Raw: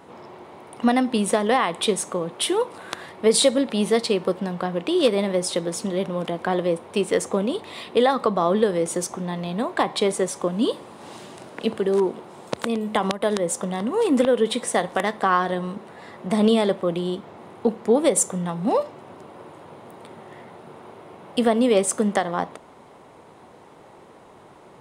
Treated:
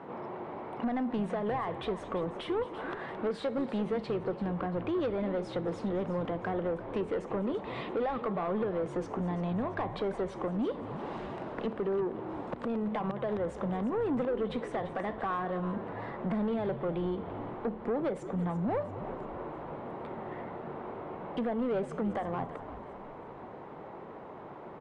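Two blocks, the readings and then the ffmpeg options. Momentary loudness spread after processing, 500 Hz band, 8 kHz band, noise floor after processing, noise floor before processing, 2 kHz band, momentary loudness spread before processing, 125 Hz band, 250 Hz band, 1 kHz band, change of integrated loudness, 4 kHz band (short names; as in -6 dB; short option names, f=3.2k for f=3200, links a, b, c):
9 LU, -11.0 dB, under -35 dB, -46 dBFS, -48 dBFS, -12.5 dB, 14 LU, -5.5 dB, -9.5 dB, -10.0 dB, -11.5 dB, -21.0 dB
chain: -filter_complex "[0:a]acompressor=threshold=-30dB:ratio=3,highpass=f=96:w=0.5412,highpass=f=96:w=1.3066,asplit=2[a][b];[b]aecho=0:1:218:0.106[c];[a][c]amix=inputs=2:normalize=0,asoftclip=type=tanh:threshold=-29dB,lowpass=1.8k,asplit=2[d][e];[e]asplit=4[f][g][h][i];[f]adelay=340,afreqshift=-73,volume=-13dB[j];[g]adelay=680,afreqshift=-146,volume=-19.9dB[k];[h]adelay=1020,afreqshift=-219,volume=-26.9dB[l];[i]adelay=1360,afreqshift=-292,volume=-33.8dB[m];[j][k][l][m]amix=inputs=4:normalize=0[n];[d][n]amix=inputs=2:normalize=0,volume=2.5dB"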